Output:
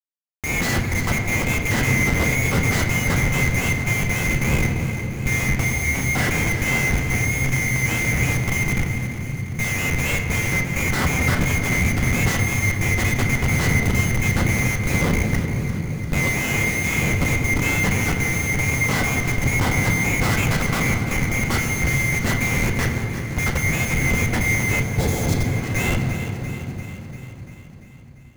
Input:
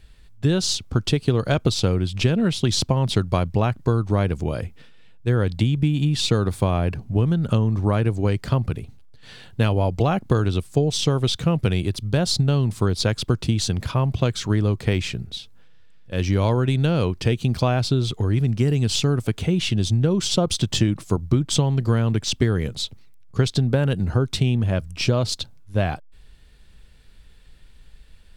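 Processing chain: band-swap scrambler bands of 2000 Hz; high shelf 7300 Hz -5 dB; Schmitt trigger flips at -26 dBFS; on a send at -2.5 dB: reverb RT60 3.5 s, pre-delay 10 ms; on the sum: dynamic EQ 120 Hz, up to +7 dB, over -41 dBFS, Q 0.78; notch 640 Hz, Q 20; echo with dull and thin repeats by turns 0.172 s, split 920 Hz, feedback 79%, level -9 dB; spectral repair 24.85–25.55, 910–3200 Hz after; in parallel at -6 dB: sample-and-hold 20×; on the sum: gain -3.5 dB

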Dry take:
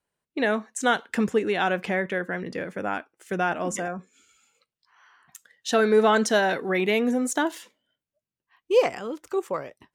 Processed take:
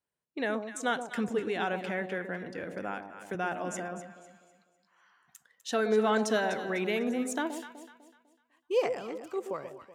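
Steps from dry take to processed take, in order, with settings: HPF 53 Hz; on a send: echo with dull and thin repeats by turns 0.125 s, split 890 Hz, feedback 59%, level -7 dB; 2.63–3.35 on the sum: three-band squash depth 40%; gain -8 dB

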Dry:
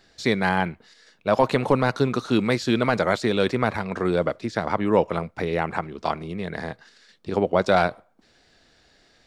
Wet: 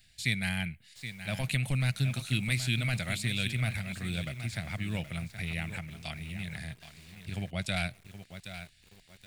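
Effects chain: EQ curve 130 Hz 0 dB, 450 Hz -30 dB, 680 Hz -18 dB, 980 Hz -29 dB, 2400 Hz +1 dB, 5800 Hz -7 dB, 9100 Hz +9 dB; lo-fi delay 0.773 s, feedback 35%, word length 8-bit, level -10.5 dB

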